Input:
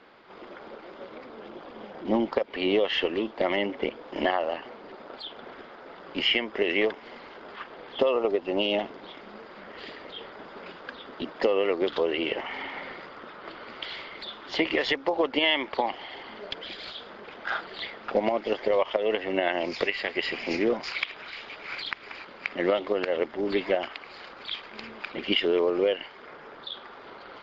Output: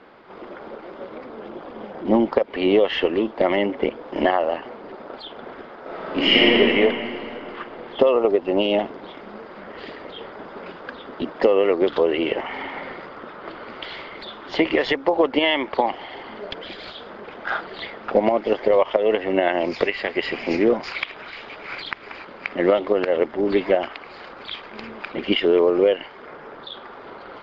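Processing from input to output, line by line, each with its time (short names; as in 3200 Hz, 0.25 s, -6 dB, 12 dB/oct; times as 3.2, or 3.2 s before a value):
5.8–6.56 reverb throw, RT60 2.8 s, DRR -7.5 dB
whole clip: high shelf 2200 Hz -9.5 dB; gain +7.5 dB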